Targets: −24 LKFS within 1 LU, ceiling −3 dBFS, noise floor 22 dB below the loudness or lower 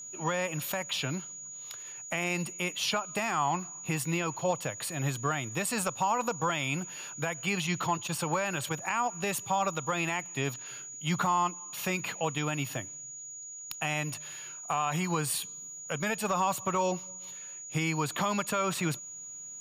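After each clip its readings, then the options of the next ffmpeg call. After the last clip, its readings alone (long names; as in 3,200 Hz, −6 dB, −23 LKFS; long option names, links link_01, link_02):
interfering tone 6,800 Hz; level of the tone −41 dBFS; integrated loudness −32.0 LKFS; sample peak −18.0 dBFS; target loudness −24.0 LKFS
→ -af "bandreject=frequency=6800:width=30"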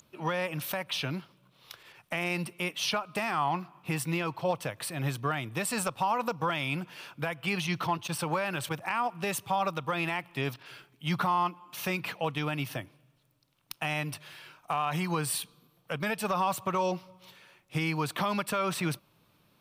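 interfering tone none found; integrated loudness −31.5 LKFS; sample peak −18.5 dBFS; target loudness −24.0 LKFS
→ -af "volume=7.5dB"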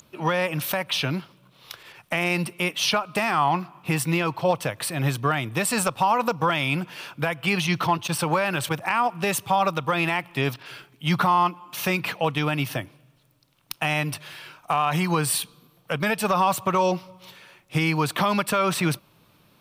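integrated loudness −24.0 LKFS; sample peak −11.0 dBFS; background noise floor −60 dBFS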